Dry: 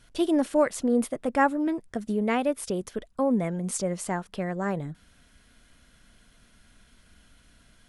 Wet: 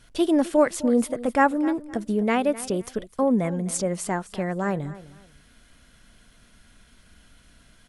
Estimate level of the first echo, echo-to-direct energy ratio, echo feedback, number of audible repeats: −17.0 dB, −17.0 dB, 25%, 2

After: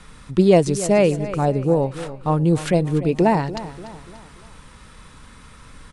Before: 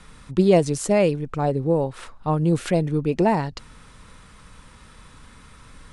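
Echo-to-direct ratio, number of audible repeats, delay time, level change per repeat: −13.5 dB, 3, 292 ms, −7.0 dB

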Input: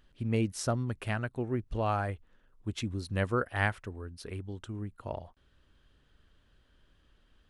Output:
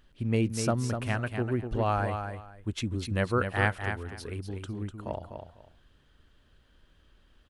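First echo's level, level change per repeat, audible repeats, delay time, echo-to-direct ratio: −7.0 dB, −13.5 dB, 2, 248 ms, −7.0 dB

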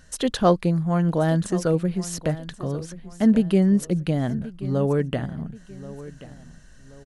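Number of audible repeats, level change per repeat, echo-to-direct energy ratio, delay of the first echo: 2, −8.5 dB, −16.0 dB, 1,081 ms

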